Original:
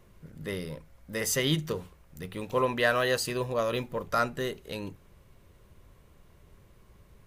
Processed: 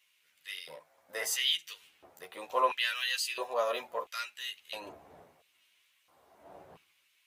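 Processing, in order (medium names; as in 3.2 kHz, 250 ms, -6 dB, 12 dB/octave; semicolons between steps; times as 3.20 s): wind noise 85 Hz -35 dBFS; LFO high-pass square 0.74 Hz 710–2700 Hz; chorus voices 4, 0.64 Hz, delay 12 ms, depth 1.6 ms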